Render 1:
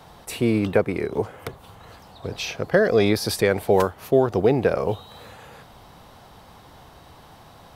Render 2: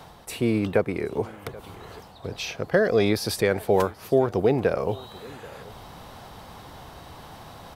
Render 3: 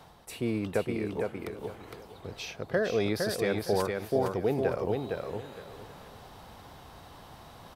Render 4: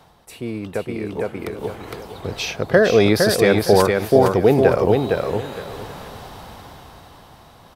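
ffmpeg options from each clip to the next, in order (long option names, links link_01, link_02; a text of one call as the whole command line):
ffmpeg -i in.wav -af "aecho=1:1:782:0.0668,areverse,acompressor=mode=upward:threshold=-32dB:ratio=2.5,areverse,volume=-2.5dB" out.wav
ffmpeg -i in.wav -af "aecho=1:1:460|920|1380:0.631|0.139|0.0305,volume=-7.5dB" out.wav
ffmpeg -i in.wav -af "dynaudnorm=framelen=280:gausssize=11:maxgain=13dB,volume=2dB" out.wav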